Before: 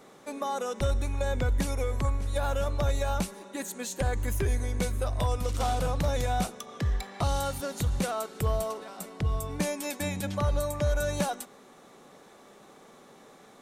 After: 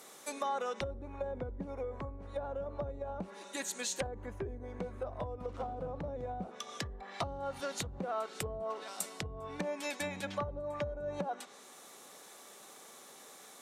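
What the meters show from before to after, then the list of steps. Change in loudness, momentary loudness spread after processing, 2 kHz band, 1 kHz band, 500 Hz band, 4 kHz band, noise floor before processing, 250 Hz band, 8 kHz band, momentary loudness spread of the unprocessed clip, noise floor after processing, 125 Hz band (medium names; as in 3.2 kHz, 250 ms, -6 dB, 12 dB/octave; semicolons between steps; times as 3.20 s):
-9.0 dB, 15 LU, -6.5 dB, -7.0 dB, -6.5 dB, -6.0 dB, -54 dBFS, -9.5 dB, -5.5 dB, 6 LU, -55 dBFS, -15.5 dB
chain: low-pass that closes with the level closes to 440 Hz, closed at -23 dBFS; RIAA curve recording; trim -2 dB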